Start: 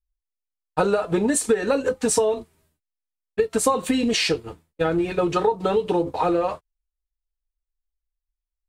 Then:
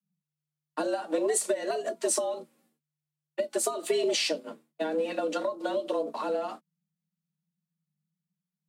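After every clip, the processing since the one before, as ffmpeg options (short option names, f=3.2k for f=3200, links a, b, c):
-filter_complex "[0:a]acrossover=split=360|3000[a][b][c];[b]acompressor=threshold=-29dB:ratio=6[d];[a][d][c]amix=inputs=3:normalize=0,afreqshift=150,volume=-4.5dB"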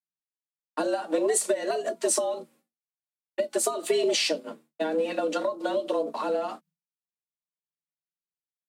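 -af "agate=range=-33dB:threshold=-55dB:ratio=3:detection=peak,volume=2.5dB"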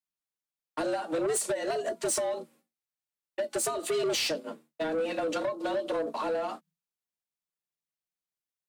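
-af "asoftclip=type=tanh:threshold=-24.5dB"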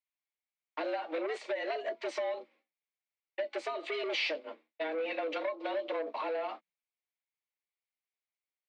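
-af "highpass=f=340:w=0.5412,highpass=f=340:w=1.3066,equalizer=f=410:t=q:w=4:g=-5,equalizer=f=1.4k:t=q:w=4:g=-4,equalizer=f=2.2k:t=q:w=4:g=10,lowpass=f=4k:w=0.5412,lowpass=f=4k:w=1.3066,volume=-3dB"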